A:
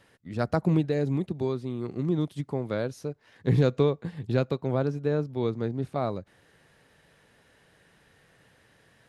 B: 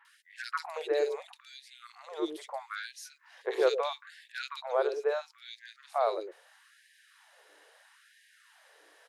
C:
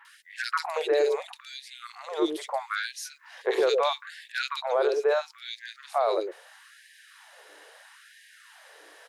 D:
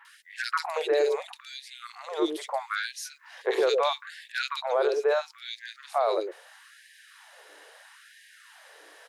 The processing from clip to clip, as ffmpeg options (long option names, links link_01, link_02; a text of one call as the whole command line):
ffmpeg -i in.wav -filter_complex "[0:a]aeval=exprs='val(0)+0.00794*(sin(2*PI*60*n/s)+sin(2*PI*2*60*n/s)/2+sin(2*PI*3*60*n/s)/3+sin(2*PI*4*60*n/s)/4+sin(2*PI*5*60*n/s)/5)':channel_layout=same,acrossover=split=390|2200[link_01][link_02][link_03];[link_03]adelay=50[link_04];[link_01]adelay=110[link_05];[link_05][link_02][link_04]amix=inputs=3:normalize=0,afftfilt=real='re*gte(b*sr/1024,330*pow(1600/330,0.5+0.5*sin(2*PI*0.76*pts/sr)))':imag='im*gte(b*sr/1024,330*pow(1600/330,0.5+0.5*sin(2*PI*0.76*pts/sr)))':win_size=1024:overlap=0.75,volume=4dB" out.wav
ffmpeg -i in.wav -af "alimiter=limit=-24dB:level=0:latency=1:release=13,volume=8.5dB" out.wav
ffmpeg -i in.wav -af "highpass=frequency=160:poles=1" out.wav